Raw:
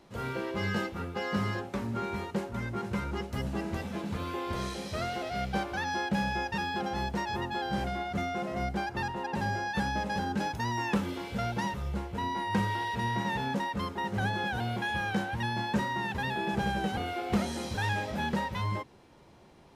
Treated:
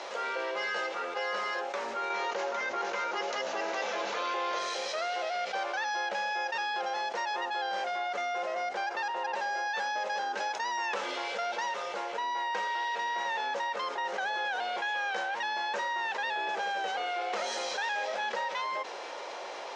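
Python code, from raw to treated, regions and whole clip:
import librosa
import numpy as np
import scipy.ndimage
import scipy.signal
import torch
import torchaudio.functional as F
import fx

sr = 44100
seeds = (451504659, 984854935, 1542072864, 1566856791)

y = fx.chain(x, sr, fx.resample_bad(factor=3, down='none', up='filtered'),
    fx.env_flatten(amount_pct=70), at=(2.1, 4.59))
y = scipy.signal.sosfilt(scipy.signal.ellip(3, 1.0, 80, [520.0, 6500.0], 'bandpass', fs=sr, output='sos'), y)
y = fx.env_flatten(y, sr, amount_pct=70)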